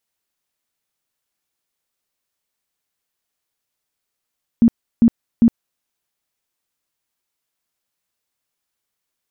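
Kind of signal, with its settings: tone bursts 232 Hz, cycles 14, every 0.40 s, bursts 3, -7 dBFS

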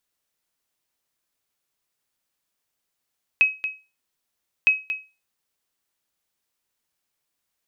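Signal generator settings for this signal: sonar ping 2.55 kHz, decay 0.29 s, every 1.26 s, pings 2, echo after 0.23 s, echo -10.5 dB -9 dBFS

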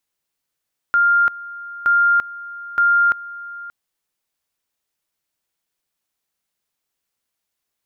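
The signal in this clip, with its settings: two-level tone 1.4 kHz -11.5 dBFS, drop 18.5 dB, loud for 0.34 s, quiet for 0.58 s, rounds 3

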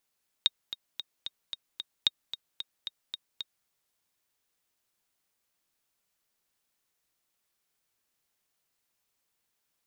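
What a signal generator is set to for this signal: metronome 224 bpm, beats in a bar 6, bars 2, 3.73 kHz, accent 13 dB -9 dBFS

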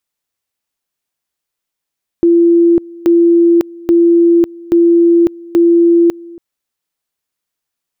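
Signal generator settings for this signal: two-level tone 340 Hz -5 dBFS, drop 23.5 dB, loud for 0.55 s, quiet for 0.28 s, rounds 5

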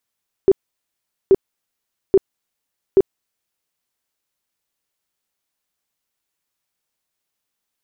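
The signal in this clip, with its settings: tone bursts 387 Hz, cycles 14, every 0.83 s, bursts 4, -6.5 dBFS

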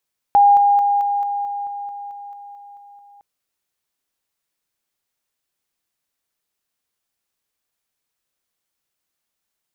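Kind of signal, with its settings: level ladder 811 Hz -8 dBFS, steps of -3 dB, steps 13, 0.22 s 0.00 s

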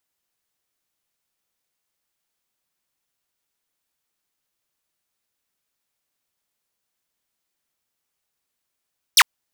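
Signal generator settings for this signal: laser zap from 6.4 kHz, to 840 Hz, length 0.05 s saw, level -5.5 dB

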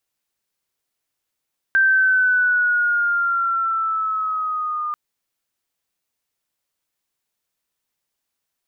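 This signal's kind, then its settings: gliding synth tone sine, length 3.19 s, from 1.57 kHz, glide -4.5 st, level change -10 dB, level -12 dB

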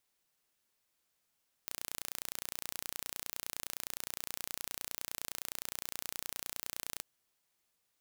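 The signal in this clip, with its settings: pulse train 29.7 per s, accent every 0, -11.5 dBFS 5.33 s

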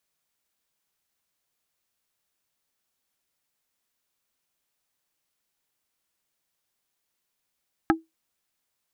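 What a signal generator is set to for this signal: wood hit plate, lowest mode 324 Hz, modes 4, decay 0.18 s, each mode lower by 1 dB, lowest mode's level -14 dB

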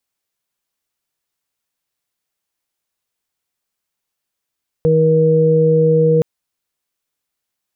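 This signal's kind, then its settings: steady additive tone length 1.37 s, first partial 159 Hz, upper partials -11.5/3 dB, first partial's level -14 dB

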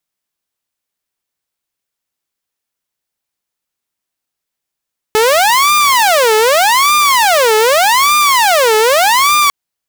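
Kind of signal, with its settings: siren wail 431–1200 Hz 0.83 per s saw -5 dBFS 4.35 s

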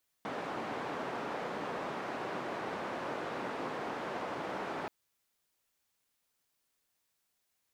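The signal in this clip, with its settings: noise band 210–990 Hz, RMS -38.5 dBFS 4.63 s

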